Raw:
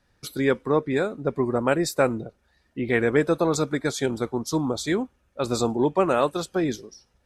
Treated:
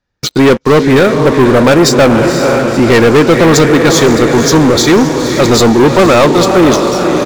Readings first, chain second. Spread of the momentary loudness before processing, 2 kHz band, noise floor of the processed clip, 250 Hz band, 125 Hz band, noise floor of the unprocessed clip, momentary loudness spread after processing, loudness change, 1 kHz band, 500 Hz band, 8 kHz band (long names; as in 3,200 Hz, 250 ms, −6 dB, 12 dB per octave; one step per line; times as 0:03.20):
11 LU, +17.0 dB, −25 dBFS, +18.0 dB, +18.5 dB, −68 dBFS, 4 LU, +17.0 dB, +17.0 dB, +16.5 dB, +19.0 dB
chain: feedback delay with all-pass diffusion 506 ms, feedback 56%, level −9.5 dB
downsampling to 16,000 Hz
leveller curve on the samples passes 5
level +4 dB